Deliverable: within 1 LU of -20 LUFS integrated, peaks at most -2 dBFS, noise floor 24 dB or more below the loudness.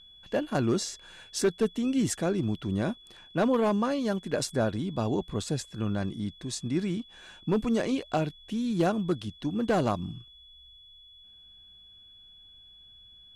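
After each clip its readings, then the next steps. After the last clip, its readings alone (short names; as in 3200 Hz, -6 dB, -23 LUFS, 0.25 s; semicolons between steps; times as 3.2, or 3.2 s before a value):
clipped 0.4%; flat tops at -18.0 dBFS; steady tone 3400 Hz; tone level -51 dBFS; loudness -29.5 LUFS; peak -18.0 dBFS; loudness target -20.0 LUFS
-> clip repair -18 dBFS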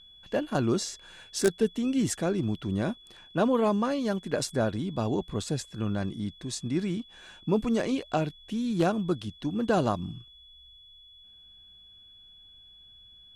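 clipped 0.0%; steady tone 3400 Hz; tone level -51 dBFS
-> notch 3400 Hz, Q 30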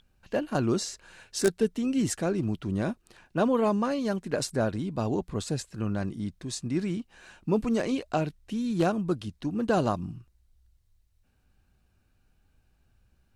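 steady tone none; loudness -29.5 LUFS; peak -9.0 dBFS; loudness target -20.0 LUFS
-> gain +9.5 dB; limiter -2 dBFS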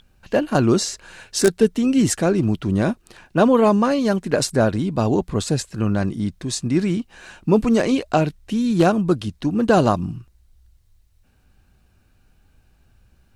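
loudness -20.0 LUFS; peak -2.0 dBFS; noise floor -59 dBFS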